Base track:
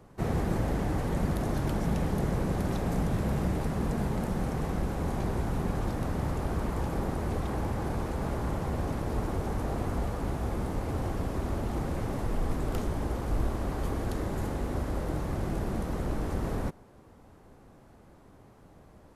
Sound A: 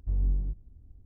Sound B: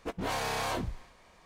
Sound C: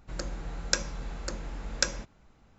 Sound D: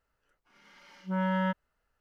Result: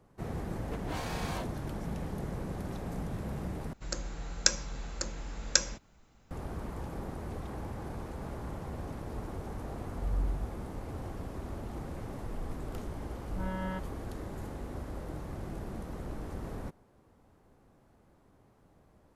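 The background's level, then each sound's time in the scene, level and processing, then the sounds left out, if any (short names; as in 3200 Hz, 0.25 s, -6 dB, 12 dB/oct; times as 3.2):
base track -8.5 dB
0.65 add B -7 dB
3.73 replace with C -2.5 dB + high shelf 6100 Hz +11.5 dB
9.93 add A -5 dB
12.27 add D -9 dB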